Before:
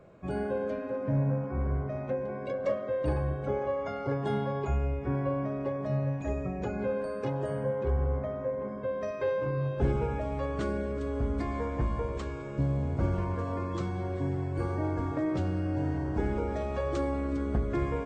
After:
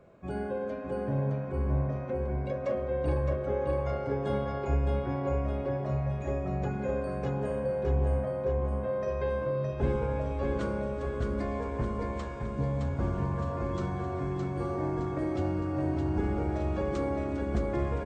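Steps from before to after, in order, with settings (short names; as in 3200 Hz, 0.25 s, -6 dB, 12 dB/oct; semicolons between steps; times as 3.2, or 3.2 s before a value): feedback echo 0.615 s, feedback 52%, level -4 dB; on a send at -9 dB: reverb RT60 0.95 s, pre-delay 6 ms; on the sum: gain -2.5 dB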